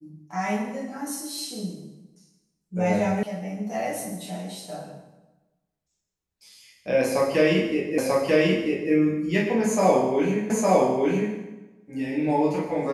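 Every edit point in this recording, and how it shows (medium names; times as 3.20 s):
3.23 s: sound stops dead
7.98 s: repeat of the last 0.94 s
10.50 s: repeat of the last 0.86 s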